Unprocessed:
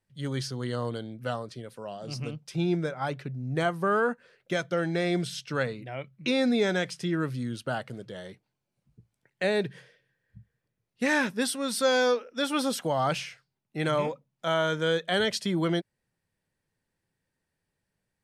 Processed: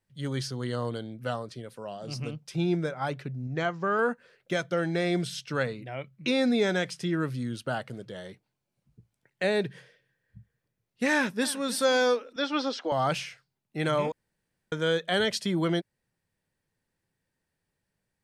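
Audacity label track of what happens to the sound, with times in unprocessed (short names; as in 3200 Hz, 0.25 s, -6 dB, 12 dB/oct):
3.470000	3.990000	rippled Chebyshev low-pass 7400 Hz, ripple 3 dB
11.110000	11.700000	echo throw 0.31 s, feedback 20%, level -17 dB
12.360000	12.920000	elliptic band-pass 290–5300 Hz
14.120000	14.720000	room tone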